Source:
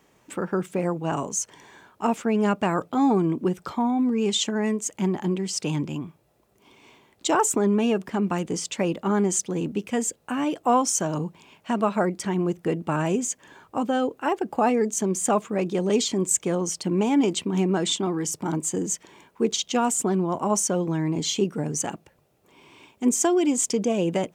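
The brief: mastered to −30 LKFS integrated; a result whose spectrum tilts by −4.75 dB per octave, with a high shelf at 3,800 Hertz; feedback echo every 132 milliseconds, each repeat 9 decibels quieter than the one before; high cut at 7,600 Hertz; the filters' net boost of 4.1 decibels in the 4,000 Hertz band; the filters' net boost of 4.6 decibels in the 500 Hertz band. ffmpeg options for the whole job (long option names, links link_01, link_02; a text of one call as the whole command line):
ffmpeg -i in.wav -af "lowpass=7600,equalizer=frequency=500:width_type=o:gain=6,highshelf=frequency=3800:gain=-5.5,equalizer=frequency=4000:width_type=o:gain=8.5,aecho=1:1:132|264|396|528:0.355|0.124|0.0435|0.0152,volume=-8dB" out.wav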